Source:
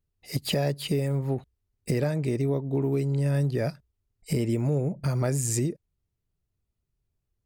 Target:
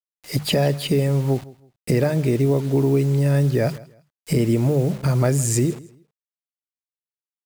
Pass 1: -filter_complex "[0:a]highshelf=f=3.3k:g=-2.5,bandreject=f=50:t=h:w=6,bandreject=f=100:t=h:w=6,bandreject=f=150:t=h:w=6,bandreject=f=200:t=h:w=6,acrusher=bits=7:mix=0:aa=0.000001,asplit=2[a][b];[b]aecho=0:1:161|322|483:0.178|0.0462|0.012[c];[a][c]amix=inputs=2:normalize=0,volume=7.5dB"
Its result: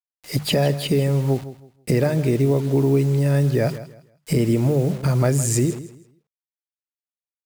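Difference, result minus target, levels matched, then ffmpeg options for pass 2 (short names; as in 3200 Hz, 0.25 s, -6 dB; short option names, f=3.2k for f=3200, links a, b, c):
echo-to-direct +6 dB
-filter_complex "[0:a]highshelf=f=3.3k:g=-2.5,bandreject=f=50:t=h:w=6,bandreject=f=100:t=h:w=6,bandreject=f=150:t=h:w=6,bandreject=f=200:t=h:w=6,acrusher=bits=7:mix=0:aa=0.000001,asplit=2[a][b];[b]aecho=0:1:161|322:0.0891|0.0232[c];[a][c]amix=inputs=2:normalize=0,volume=7.5dB"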